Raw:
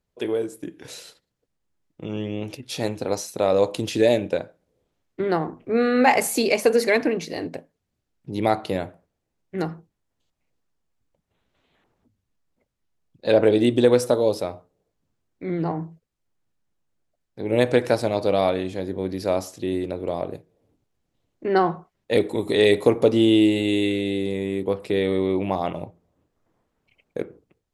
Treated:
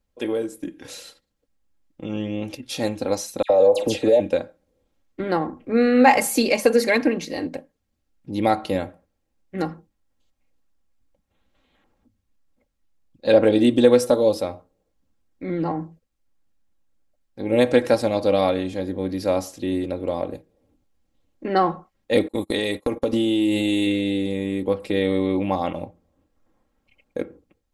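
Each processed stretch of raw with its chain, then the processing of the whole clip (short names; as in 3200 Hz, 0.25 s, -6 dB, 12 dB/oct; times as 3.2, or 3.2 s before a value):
3.42–4.2 band shelf 580 Hz +11.5 dB 1.3 oct + compressor 4:1, threshold -15 dBFS + dispersion lows, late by 81 ms, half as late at 2200 Hz
22.28–23.87 high shelf 9100 Hz +10 dB + compressor 10:1, threshold -18 dBFS + gate -29 dBFS, range -32 dB
whole clip: low shelf 86 Hz +6 dB; comb 3.7 ms, depth 54%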